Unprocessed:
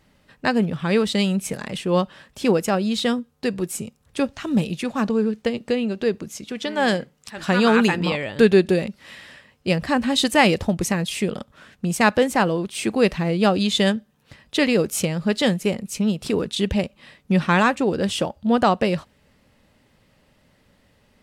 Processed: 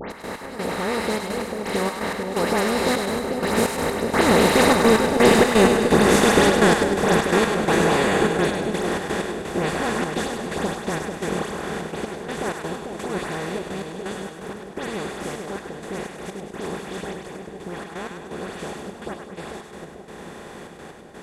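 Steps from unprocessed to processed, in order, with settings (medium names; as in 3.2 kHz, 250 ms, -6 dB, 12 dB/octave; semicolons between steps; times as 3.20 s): spectral levelling over time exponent 0.2; Doppler pass-by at 5.42 s, 21 m/s, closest 20 m; peaking EQ 3.4 kHz -6.5 dB 0.61 oct; saturation -5 dBFS, distortion -16 dB; phase dispersion highs, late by 110 ms, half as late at 2.6 kHz; trance gate "x.x..xxxxx.x..x" 127 bpm -12 dB; two-band feedback delay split 770 Hz, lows 443 ms, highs 101 ms, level -5 dB; trim -1 dB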